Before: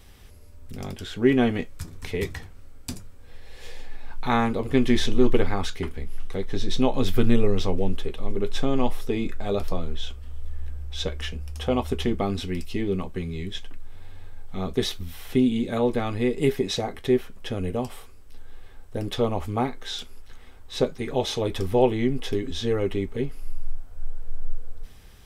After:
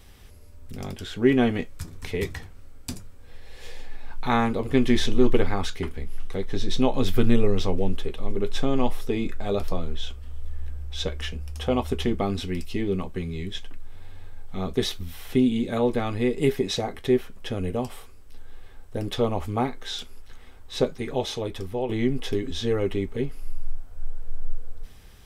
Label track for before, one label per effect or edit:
20.930000	21.890000	fade out, to -10.5 dB

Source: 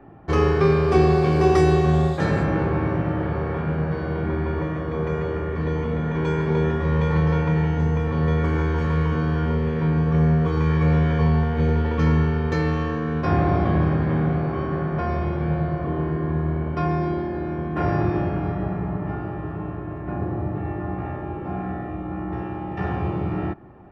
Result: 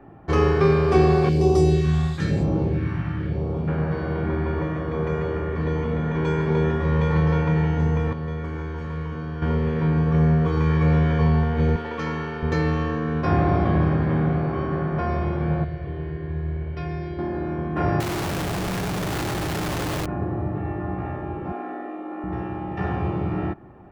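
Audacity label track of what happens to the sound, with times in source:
1.290000	3.680000	phaser stages 2, 1 Hz, lowest notch 480–1700 Hz
8.130000	9.420000	gain -8.5 dB
11.760000	12.430000	HPF 550 Hz 6 dB/oct
15.640000	17.190000	EQ curve 110 Hz 0 dB, 250 Hz -16 dB, 390 Hz -6 dB, 1200 Hz -15 dB, 1800 Hz -3 dB, 4400 Hz -1 dB, 8100 Hz -9 dB
18.000000	20.060000	infinite clipping
21.520000	22.240000	elliptic high-pass 240 Hz

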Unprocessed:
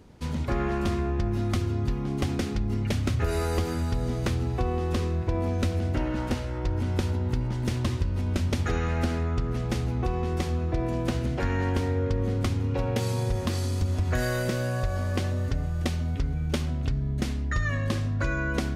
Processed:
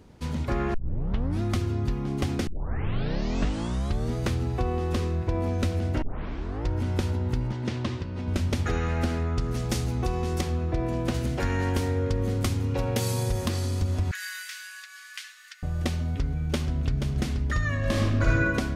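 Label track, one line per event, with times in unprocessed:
0.740000	0.740000	tape start 0.68 s
2.470000	2.470000	tape start 1.68 s
6.020000	6.020000	tape start 0.64 s
7.520000	8.280000	BPF 120–5100 Hz
9.380000	10.410000	tone controls bass 0 dB, treble +10 dB
11.140000	13.480000	high shelf 6100 Hz +11 dB
14.110000	15.630000	steep high-pass 1500 Hz
16.190000	17.040000	echo throw 0.48 s, feedback 50%, level -7 dB
17.780000	18.390000	reverb throw, RT60 1.2 s, DRR -3.5 dB

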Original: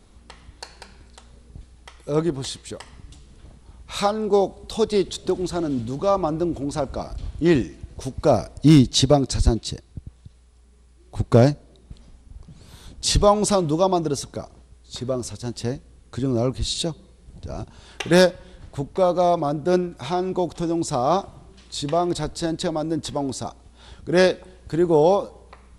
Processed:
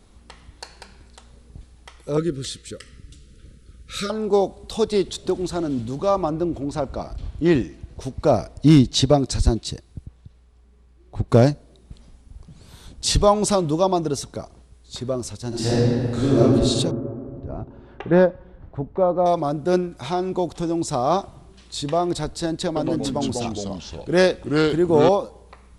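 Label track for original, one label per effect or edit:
2.170000	4.100000	elliptic band-stop 530–1300 Hz
6.290000	9.180000	high shelf 5600 Hz -> 9700 Hz -8.5 dB
10.050000	11.280000	LPF 3300 Hz -> 1900 Hz 6 dB/oct
15.480000	16.390000	reverb throw, RT60 2.4 s, DRR -9.5 dB
16.910000	19.260000	LPF 1300 Hz
22.660000	25.090000	echoes that change speed 0.102 s, each echo -3 st, echoes 2

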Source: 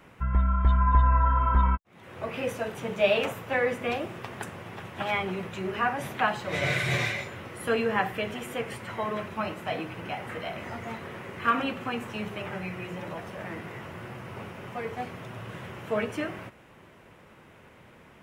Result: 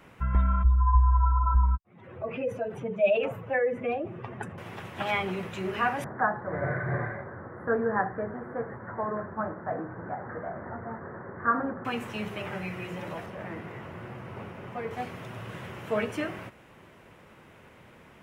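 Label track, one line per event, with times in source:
0.630000	4.580000	spectral contrast raised exponent 1.8
6.040000	11.850000	elliptic low-pass 1700 Hz
13.260000	14.910000	high shelf 2800 Hz -9.5 dB

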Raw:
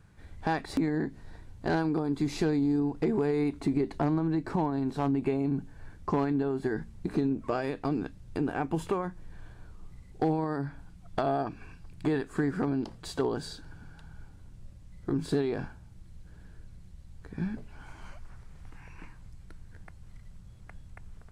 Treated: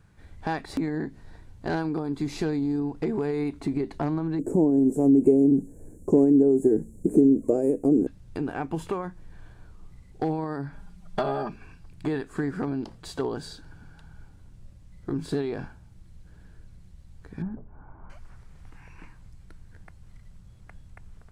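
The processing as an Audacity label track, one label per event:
4.390000	8.070000	EQ curve 130 Hz 0 dB, 280 Hz +11 dB, 500 Hz +11 dB, 810 Hz -7 dB, 1200 Hz -19 dB, 2500 Hz -18 dB, 4200 Hz -30 dB, 7200 Hz +13 dB
10.720000	11.560000	comb 5 ms, depth 91%
17.420000	18.100000	LPF 1200 Hz 24 dB/oct

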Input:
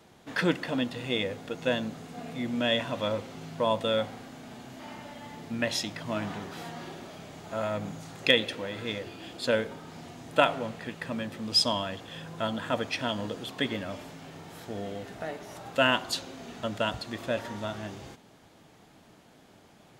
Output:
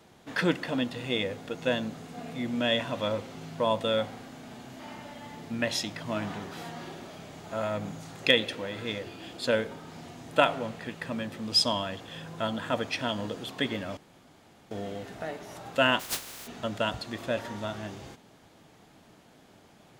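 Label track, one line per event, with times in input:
13.970000	14.710000	room tone
15.990000	16.460000	spectral contrast lowered exponent 0.16

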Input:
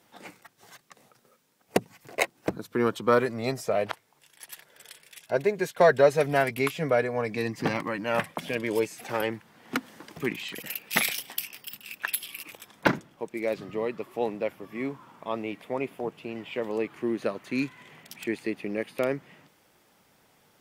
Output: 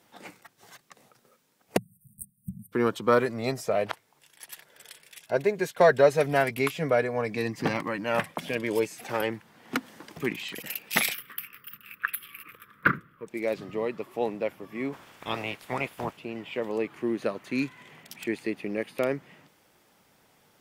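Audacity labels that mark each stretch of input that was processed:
1.770000	2.720000	spectral delete 230–8200 Hz
11.140000	13.270000	EQ curve 150 Hz 0 dB, 300 Hz -7 dB, 480 Hz -5 dB, 820 Hz -27 dB, 1200 Hz +9 dB, 6600 Hz -23 dB, 14000 Hz -1 dB
14.920000	16.160000	spectral limiter ceiling under each frame's peak by 20 dB

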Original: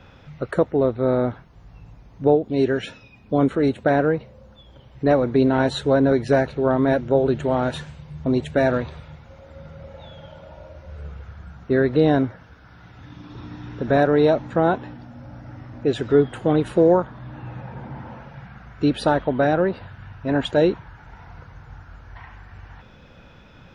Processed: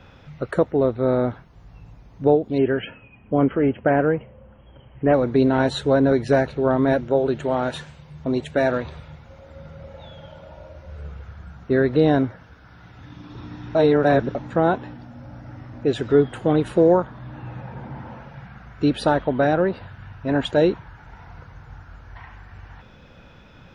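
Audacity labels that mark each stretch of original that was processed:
2.580000	5.140000	brick-wall FIR low-pass 3300 Hz
7.050000	8.850000	low shelf 210 Hz -6.5 dB
13.750000	14.350000	reverse

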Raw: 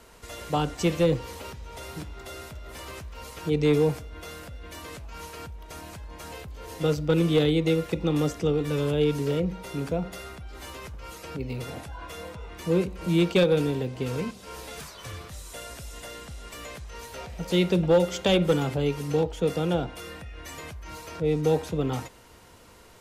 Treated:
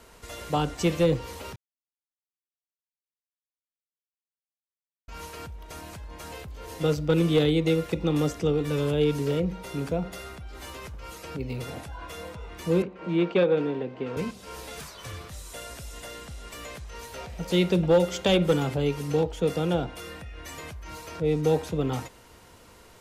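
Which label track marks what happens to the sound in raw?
1.560000	5.080000	mute
12.820000	14.170000	BPF 220–2300 Hz

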